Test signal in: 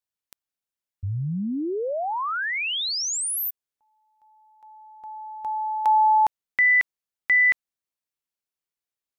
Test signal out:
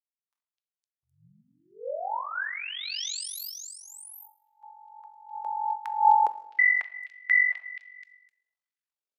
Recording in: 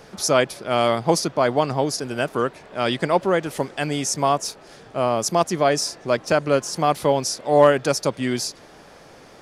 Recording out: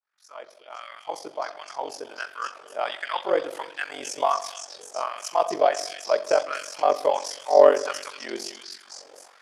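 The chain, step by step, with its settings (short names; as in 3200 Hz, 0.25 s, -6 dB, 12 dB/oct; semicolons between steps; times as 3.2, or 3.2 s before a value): opening faded in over 3.12 s; delay with a stepping band-pass 0.256 s, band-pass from 3700 Hz, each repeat 0.7 oct, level -0.5 dB; LFO high-pass sine 1.4 Hz 440–1700 Hz; shoebox room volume 290 m³, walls mixed, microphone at 0.37 m; ring modulator 23 Hz; high shelf 5100 Hz -5.5 dB; gain -4.5 dB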